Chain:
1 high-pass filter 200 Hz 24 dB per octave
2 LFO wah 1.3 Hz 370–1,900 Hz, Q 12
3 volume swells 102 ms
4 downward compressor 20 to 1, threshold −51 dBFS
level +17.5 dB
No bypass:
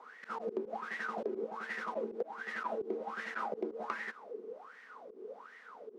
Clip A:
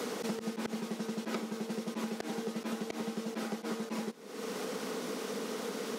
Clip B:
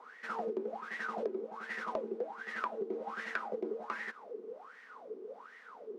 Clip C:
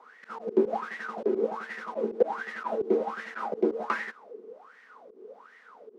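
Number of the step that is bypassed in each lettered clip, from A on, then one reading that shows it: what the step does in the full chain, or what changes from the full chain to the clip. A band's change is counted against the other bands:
2, 4 kHz band +13.5 dB
3, change in crest factor +2.5 dB
4, average gain reduction 4.5 dB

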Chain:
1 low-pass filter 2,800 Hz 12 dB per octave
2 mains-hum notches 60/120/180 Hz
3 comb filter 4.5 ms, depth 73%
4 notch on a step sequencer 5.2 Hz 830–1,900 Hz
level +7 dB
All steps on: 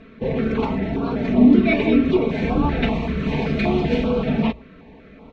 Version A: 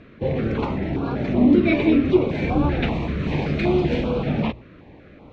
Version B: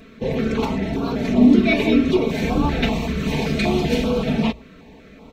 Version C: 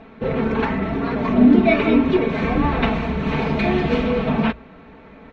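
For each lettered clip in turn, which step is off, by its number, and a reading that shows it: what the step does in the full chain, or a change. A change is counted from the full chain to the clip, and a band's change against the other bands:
3, 125 Hz band +3.0 dB
1, 4 kHz band +5.0 dB
4, 1 kHz band +3.0 dB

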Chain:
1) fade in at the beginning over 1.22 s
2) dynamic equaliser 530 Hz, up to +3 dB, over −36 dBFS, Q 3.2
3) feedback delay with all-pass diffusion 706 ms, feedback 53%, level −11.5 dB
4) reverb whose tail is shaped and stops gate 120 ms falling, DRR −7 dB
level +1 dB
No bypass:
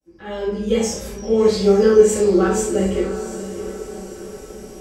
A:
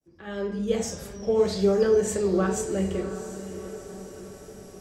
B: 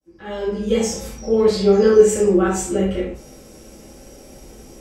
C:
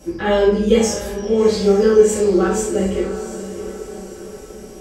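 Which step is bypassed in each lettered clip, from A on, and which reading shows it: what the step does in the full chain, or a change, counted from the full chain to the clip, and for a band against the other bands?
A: 4, change in momentary loudness spread −1 LU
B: 3, change in momentary loudness spread −6 LU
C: 1, 2 kHz band +2.0 dB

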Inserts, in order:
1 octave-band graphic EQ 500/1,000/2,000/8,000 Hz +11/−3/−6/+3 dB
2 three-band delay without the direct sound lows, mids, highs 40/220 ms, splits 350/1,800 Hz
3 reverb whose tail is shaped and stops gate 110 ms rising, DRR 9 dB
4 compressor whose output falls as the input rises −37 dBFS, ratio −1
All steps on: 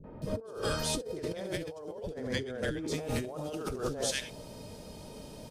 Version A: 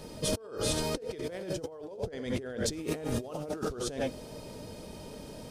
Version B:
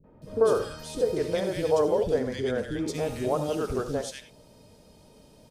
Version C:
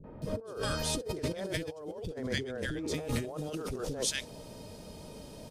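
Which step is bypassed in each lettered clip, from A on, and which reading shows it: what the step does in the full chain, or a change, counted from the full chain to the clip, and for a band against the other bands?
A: 2, change in momentary loudness spread −1 LU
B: 4, change in momentary loudness spread −5 LU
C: 3, 1 kHz band −2.0 dB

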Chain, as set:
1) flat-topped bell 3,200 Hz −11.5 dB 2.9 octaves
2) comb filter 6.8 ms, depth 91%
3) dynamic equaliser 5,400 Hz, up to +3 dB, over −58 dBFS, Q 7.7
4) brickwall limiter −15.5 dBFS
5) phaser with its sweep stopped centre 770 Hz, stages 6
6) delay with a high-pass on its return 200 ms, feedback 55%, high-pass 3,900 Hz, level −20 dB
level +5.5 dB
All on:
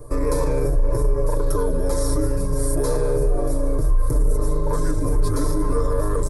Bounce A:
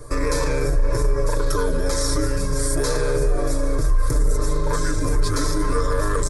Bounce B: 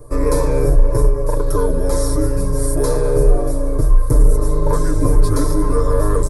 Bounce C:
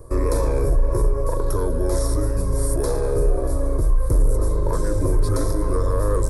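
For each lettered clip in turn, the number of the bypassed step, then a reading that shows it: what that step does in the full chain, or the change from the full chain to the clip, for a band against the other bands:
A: 1, 4 kHz band +9.0 dB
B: 4, average gain reduction 4.5 dB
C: 2, 125 Hz band +2.5 dB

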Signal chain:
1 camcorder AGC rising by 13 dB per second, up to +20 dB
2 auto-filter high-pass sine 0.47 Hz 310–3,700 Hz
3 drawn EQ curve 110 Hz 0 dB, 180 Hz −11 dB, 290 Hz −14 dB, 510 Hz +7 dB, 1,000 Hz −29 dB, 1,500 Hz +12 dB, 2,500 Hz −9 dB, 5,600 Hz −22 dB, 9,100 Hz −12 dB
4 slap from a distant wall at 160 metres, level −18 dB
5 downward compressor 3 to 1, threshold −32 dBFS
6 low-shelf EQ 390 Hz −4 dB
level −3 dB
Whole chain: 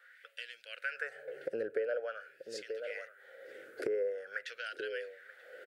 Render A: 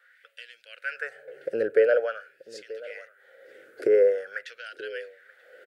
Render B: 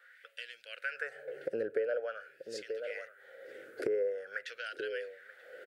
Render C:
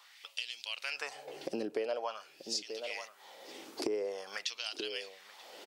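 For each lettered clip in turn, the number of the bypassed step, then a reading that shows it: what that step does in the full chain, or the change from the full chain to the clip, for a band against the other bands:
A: 5, average gain reduction 4.5 dB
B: 6, 250 Hz band +2.0 dB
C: 3, change in crest factor +2.0 dB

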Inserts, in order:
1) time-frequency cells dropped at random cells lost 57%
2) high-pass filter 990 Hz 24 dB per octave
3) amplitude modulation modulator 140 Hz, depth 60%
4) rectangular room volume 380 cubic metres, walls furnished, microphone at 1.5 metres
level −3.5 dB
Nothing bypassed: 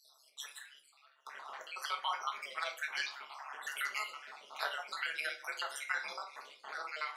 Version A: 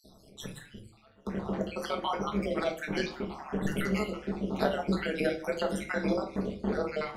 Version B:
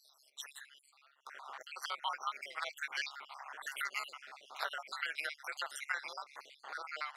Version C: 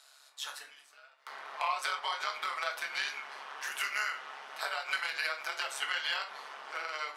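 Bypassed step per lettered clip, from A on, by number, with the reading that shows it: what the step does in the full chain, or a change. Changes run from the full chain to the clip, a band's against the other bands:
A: 2, 500 Hz band +20.0 dB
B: 4, echo-to-direct ratio −2.5 dB to none audible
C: 1, change in integrated loudness +4.5 LU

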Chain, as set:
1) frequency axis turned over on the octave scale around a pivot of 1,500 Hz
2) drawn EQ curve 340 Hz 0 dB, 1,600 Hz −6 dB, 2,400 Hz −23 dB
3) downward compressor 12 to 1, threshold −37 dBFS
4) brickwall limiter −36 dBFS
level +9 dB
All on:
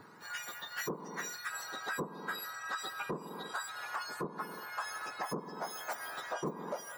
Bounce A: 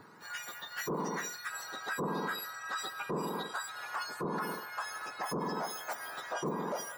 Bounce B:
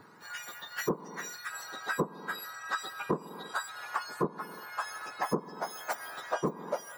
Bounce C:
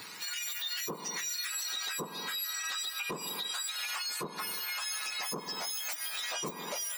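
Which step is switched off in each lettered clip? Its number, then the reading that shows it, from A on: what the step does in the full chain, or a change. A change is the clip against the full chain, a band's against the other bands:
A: 3, average gain reduction 7.5 dB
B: 4, change in crest factor +7.0 dB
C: 2, 4 kHz band +14.5 dB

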